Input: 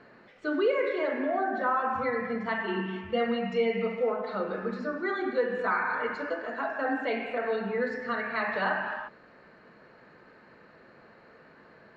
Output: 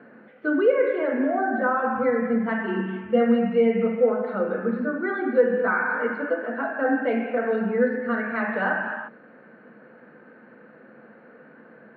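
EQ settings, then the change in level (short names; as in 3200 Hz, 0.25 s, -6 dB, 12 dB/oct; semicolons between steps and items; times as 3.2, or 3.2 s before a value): speaker cabinet 130–3000 Hz, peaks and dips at 150 Hz +6 dB, 220 Hz +10 dB, 320 Hz +4 dB, 500 Hz +10 dB, 750 Hz +5 dB, 1500 Hz +9 dB; bell 260 Hz +6 dB 0.56 oct; -2.0 dB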